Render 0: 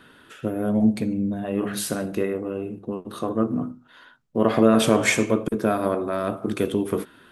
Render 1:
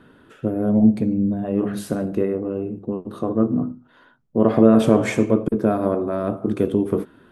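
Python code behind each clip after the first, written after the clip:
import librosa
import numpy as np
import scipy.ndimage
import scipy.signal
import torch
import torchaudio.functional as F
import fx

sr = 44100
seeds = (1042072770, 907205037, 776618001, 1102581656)

y = fx.tilt_shelf(x, sr, db=7.5, hz=1200.0)
y = y * 10.0 ** (-2.5 / 20.0)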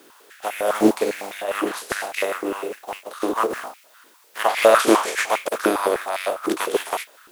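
y = fx.spec_flatten(x, sr, power=0.43)
y = fx.dmg_noise_colour(y, sr, seeds[0], colour='white', level_db=-52.0)
y = fx.filter_held_highpass(y, sr, hz=9.9, low_hz=340.0, high_hz=2200.0)
y = y * 10.0 ** (-4.5 / 20.0)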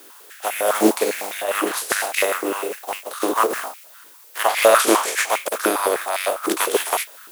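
y = fx.highpass(x, sr, hz=350.0, slope=6)
y = fx.high_shelf(y, sr, hz=7300.0, db=9.5)
y = fx.rider(y, sr, range_db=3, speed_s=2.0)
y = y * 10.0 ** (1.5 / 20.0)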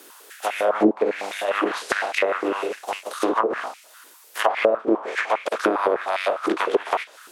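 y = fx.env_lowpass_down(x, sr, base_hz=440.0, full_db=-12.0)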